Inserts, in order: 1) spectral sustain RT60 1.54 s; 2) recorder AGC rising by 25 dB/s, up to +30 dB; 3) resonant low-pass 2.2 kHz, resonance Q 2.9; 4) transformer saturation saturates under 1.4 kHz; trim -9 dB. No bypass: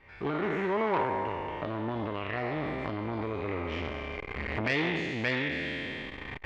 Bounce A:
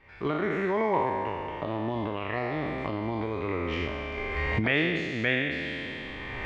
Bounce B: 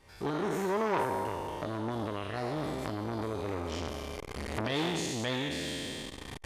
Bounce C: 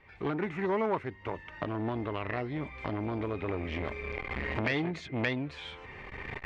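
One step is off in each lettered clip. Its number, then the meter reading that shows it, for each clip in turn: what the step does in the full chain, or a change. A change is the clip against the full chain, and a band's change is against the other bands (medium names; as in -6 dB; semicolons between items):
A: 4, crest factor change -2.0 dB; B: 3, 2 kHz band -6.0 dB; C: 1, 125 Hz band +4.0 dB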